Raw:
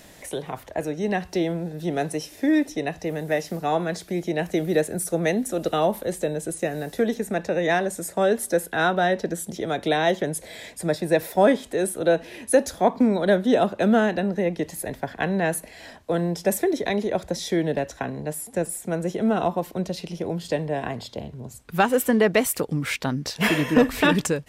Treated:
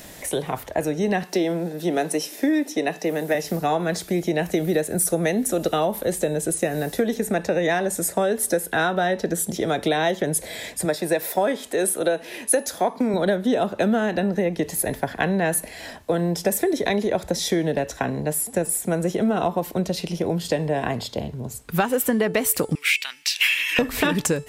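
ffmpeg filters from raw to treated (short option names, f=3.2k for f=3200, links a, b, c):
-filter_complex "[0:a]asettb=1/sr,asplit=3[a][b][c];[a]atrim=end=1.234[d];[b]atrim=start=1.23:end=3.35,asetpts=PTS-STARTPTS,afade=t=in:d=0.004:c=qsin,afade=t=out:st=2.116:d=0.004:c=qsin,highpass=f=190:w=0.5412,highpass=f=190:w=1.3066[e];[c]atrim=start=3.346[f];[d][e]acrossfade=d=0.004:c1=hsin:c2=qsin[g];[g][f]acrossfade=d=0.004:c1=qsin:c2=hsin,asettb=1/sr,asplit=3[h][i][j];[h]atrim=end=10.854[k];[i]atrim=start=10.85:end=13.14,asetpts=PTS-STARTPTS,afade=t=in:d=0.004:c=qsin,afade=t=out:st=2.286:d=0.004:c=qsin,highpass=f=350:p=1[l];[j]atrim=start=13.136[m];[k][l]acrossfade=d=0.004:c1=hsin:c2=qsin[n];[n][m]acrossfade=d=0.004:c1=qsin:c2=hsin,asettb=1/sr,asplit=3[o][p][q];[o]atrim=end=22.754[r];[p]atrim=start=22.75:end=23.79,asetpts=PTS-STARTPTS,afade=t=in:d=0.004:c=qsin,afade=t=out:st=1.036:d=0.004:c=qsin,highpass=f=2.5k:t=q:w=3.7[s];[q]atrim=start=23.786[t];[r][s]acrossfade=d=0.004:c1=hsin:c2=qsin[u];[u][t]acrossfade=d=0.004:c1=qsin:c2=hsin,acompressor=threshold=-23dB:ratio=6,highshelf=f=11k:g=8,bandreject=f=437.9:t=h:w=4,bandreject=f=875.8:t=h:w=4,bandreject=f=1.3137k:t=h:w=4,bandreject=f=1.7516k:t=h:w=4,bandreject=f=2.1895k:t=h:w=4,bandreject=f=2.6274k:t=h:w=4,bandreject=f=3.0653k:t=h:w=4,bandreject=f=3.5032k:t=h:w=4,bandreject=f=3.9411k:t=h:w=4,bandreject=f=4.379k:t=h:w=4,bandreject=f=4.8169k:t=h:w=4,bandreject=f=5.2548k:t=h:w=4,bandreject=f=5.6927k:t=h:w=4,bandreject=f=6.1306k:t=h:w=4,bandreject=f=6.5685k:t=h:w=4,bandreject=f=7.0064k:t=h:w=4,bandreject=f=7.4443k:t=h:w=4,bandreject=f=7.8822k:t=h:w=4,bandreject=f=8.3201k:t=h:w=4,bandreject=f=8.758k:t=h:w=4,bandreject=f=9.1959k:t=h:w=4,bandreject=f=9.6338k:t=h:w=4,bandreject=f=10.0717k:t=h:w=4,bandreject=f=10.5096k:t=h:w=4,bandreject=f=10.9475k:t=h:w=4,volume=5.5dB"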